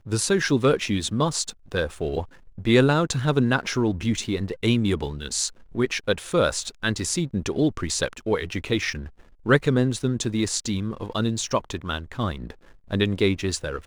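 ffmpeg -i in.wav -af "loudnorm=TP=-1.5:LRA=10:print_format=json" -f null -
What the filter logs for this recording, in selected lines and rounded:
"input_i" : "-24.7",
"input_tp" : "-5.8",
"input_lra" : "3.9",
"input_thresh" : "-34.9",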